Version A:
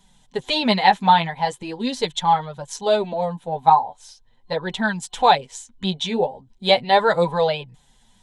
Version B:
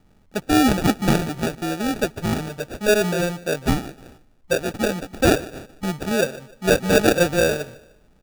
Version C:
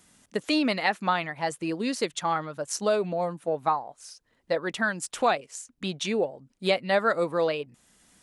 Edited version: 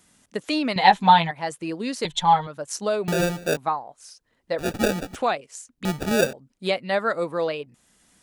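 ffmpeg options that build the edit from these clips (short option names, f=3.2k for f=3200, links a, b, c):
-filter_complex "[0:a]asplit=2[a][b];[1:a]asplit=3[c][d][e];[2:a]asplit=6[f][g][h][i][j][k];[f]atrim=end=0.762[l];[a]atrim=start=0.758:end=1.312[m];[g]atrim=start=1.308:end=2.052[n];[b]atrim=start=2.048:end=2.472[o];[h]atrim=start=2.468:end=3.082[p];[c]atrim=start=3.078:end=3.572[q];[i]atrim=start=3.568:end=4.6[r];[d]atrim=start=4.58:end=5.16[s];[j]atrim=start=5.14:end=5.852[t];[e]atrim=start=5.848:end=6.332[u];[k]atrim=start=6.328[v];[l][m]acrossfade=d=0.004:c1=hsin:c2=hsin[w];[w][n]acrossfade=d=0.004:c1=hsin:c2=hsin[x];[x][o]acrossfade=d=0.004:c1=hsin:c2=hsin[y];[y][p]acrossfade=d=0.004:c1=hsin:c2=hsin[z];[z][q]acrossfade=d=0.004:c1=hsin:c2=hsin[aa];[aa][r]acrossfade=d=0.004:c1=hsin:c2=hsin[ab];[ab][s]acrossfade=d=0.02:c1=tri:c2=tri[ac];[ac][t]acrossfade=d=0.02:c1=tri:c2=tri[ad];[ad][u]acrossfade=d=0.004:c1=hsin:c2=hsin[ae];[ae][v]acrossfade=d=0.004:c1=hsin:c2=hsin"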